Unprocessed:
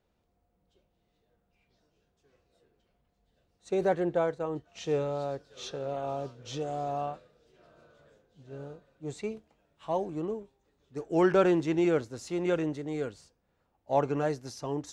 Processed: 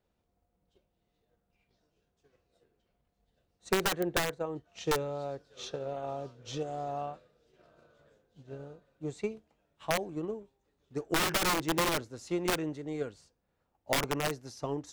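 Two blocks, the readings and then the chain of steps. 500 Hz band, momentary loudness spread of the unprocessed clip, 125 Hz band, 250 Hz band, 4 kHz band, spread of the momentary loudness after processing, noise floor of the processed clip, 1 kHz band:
-5.5 dB, 17 LU, -3.0 dB, -5.0 dB, +9.5 dB, 14 LU, -79 dBFS, -1.0 dB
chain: wrapped overs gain 21.5 dB; transient shaper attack +7 dB, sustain 0 dB; gain -4 dB

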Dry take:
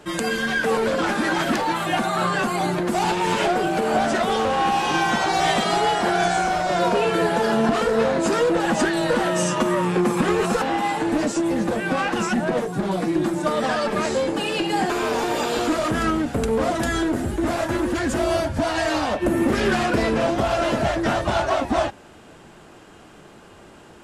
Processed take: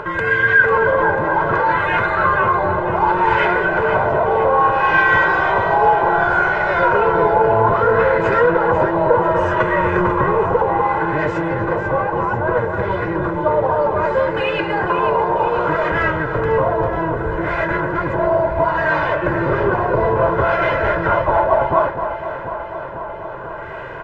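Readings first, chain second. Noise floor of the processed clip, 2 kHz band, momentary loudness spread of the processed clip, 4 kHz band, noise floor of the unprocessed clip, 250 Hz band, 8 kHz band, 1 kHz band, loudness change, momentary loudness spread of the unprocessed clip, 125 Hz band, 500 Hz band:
-28 dBFS, +8.5 dB, 7 LU, -7.5 dB, -46 dBFS, -2.0 dB, under -20 dB, +7.0 dB, +5.0 dB, 3 LU, +5.5 dB, +5.5 dB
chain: octaver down 1 oct, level +2 dB; comb 2 ms, depth 72%; LFO low-pass sine 0.64 Hz 840–1900 Hz; low shelf 280 Hz -9.5 dB; on a send: echo with dull and thin repeats by turns 0.247 s, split 1400 Hz, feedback 74%, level -7 dB; on the sum: upward compressor, threshold -22 dBFS; gain +2 dB

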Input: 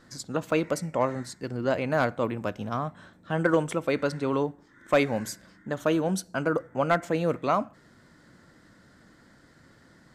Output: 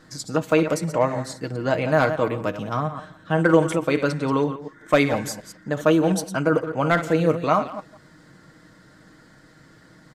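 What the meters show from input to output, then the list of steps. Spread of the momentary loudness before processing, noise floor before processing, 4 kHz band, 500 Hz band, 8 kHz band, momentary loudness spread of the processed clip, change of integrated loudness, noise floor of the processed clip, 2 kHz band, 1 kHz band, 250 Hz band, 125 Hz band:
9 LU, -58 dBFS, +5.5 dB, +5.5 dB, +5.0 dB, 11 LU, +5.5 dB, -52 dBFS, +5.5 dB, +5.0 dB, +6.5 dB, +7.0 dB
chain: reverse delay 0.12 s, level -10.5 dB; comb 6.4 ms, depth 46%; speakerphone echo 0.17 s, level -16 dB; gain +4 dB

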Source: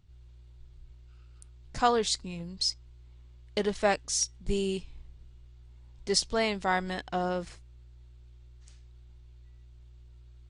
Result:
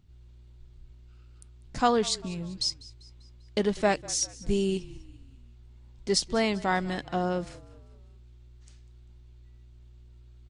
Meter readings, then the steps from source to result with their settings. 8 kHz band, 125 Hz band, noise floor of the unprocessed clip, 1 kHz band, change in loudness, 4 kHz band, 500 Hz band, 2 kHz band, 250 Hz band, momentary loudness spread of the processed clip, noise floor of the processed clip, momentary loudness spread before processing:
0.0 dB, +4.0 dB, -53 dBFS, +0.5 dB, +1.5 dB, 0.0 dB, +2.0 dB, 0.0 dB, +5.0 dB, 12 LU, -52 dBFS, 12 LU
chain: bell 240 Hz +6 dB 1.2 oct; on a send: frequency-shifting echo 0.197 s, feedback 49%, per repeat -37 Hz, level -20.5 dB

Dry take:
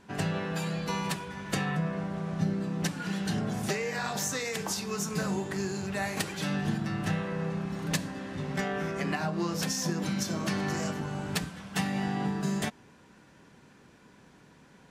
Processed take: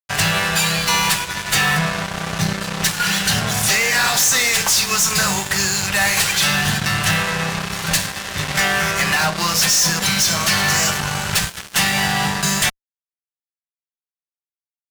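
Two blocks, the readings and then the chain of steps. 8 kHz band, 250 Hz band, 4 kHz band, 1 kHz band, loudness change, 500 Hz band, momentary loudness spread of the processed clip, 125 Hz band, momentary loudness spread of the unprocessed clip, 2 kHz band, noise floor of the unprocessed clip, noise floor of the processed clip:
+20.5 dB, +4.5 dB, +20.5 dB, +14.5 dB, +15.0 dB, +6.5 dB, 7 LU, +8.0 dB, 3 LU, +18.5 dB, -57 dBFS, under -85 dBFS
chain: passive tone stack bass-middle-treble 10-0-10; fuzz box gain 45 dB, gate -50 dBFS

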